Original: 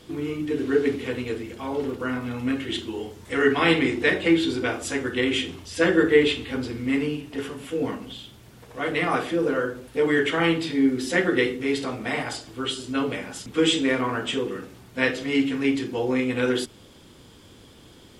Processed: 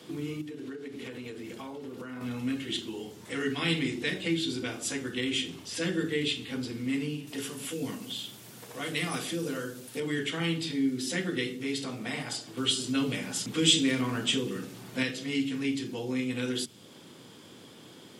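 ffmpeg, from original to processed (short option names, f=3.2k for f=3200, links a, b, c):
-filter_complex "[0:a]asettb=1/sr,asplit=3[a][b][c];[a]atrim=end=0.414[d];[b]atrim=start=0.41:end=2.21,asetpts=PTS-STARTPTS,afade=t=in:d=0.004:c=qsin,afade=t=out:st=1.796:d=0.004:c=qsin,acompressor=threshold=-32dB:ratio=12:attack=3.2:release=140:knee=1:detection=peak[e];[c]atrim=start=2.206[f];[d][e]acrossfade=d=0.004:c1=hsin:c2=qsin[g];[g][f]acrossfade=d=0.004:c1=qsin:c2=hsin,asettb=1/sr,asplit=3[h][i][j];[h]atrim=end=7.274[k];[i]atrim=start=7.27:end=10,asetpts=PTS-STARTPTS,afade=t=in:d=0.004:c=qsin,afade=t=out:st=2.726:d=0.004:c=qsin,highshelf=f=4.5k:g=11[l];[j]atrim=start=9.996[m];[k][l]acrossfade=d=0.004:c1=hsin:c2=qsin[n];[n][m]acrossfade=d=0.004:c1=qsin:c2=hsin,asettb=1/sr,asplit=3[o][p][q];[o]atrim=end=12.574[r];[p]atrim=start=12.57:end=15.03,asetpts=PTS-STARTPTS,afade=t=in:d=0.004:c=qsin,afade=t=out:st=2.456:d=0.004:c=qsin,acontrast=38[s];[q]atrim=start=15.026[t];[r][s]acrossfade=d=0.004:c1=hsin:c2=qsin[u];[u][t]acrossfade=d=0.004:c1=qsin:c2=hsin,highpass=f=130:w=0.5412,highpass=f=130:w=1.3066,acrossover=split=220|3000[v][w][x];[w]acompressor=threshold=-43dB:ratio=2.5[y];[v][y][x]amix=inputs=3:normalize=0"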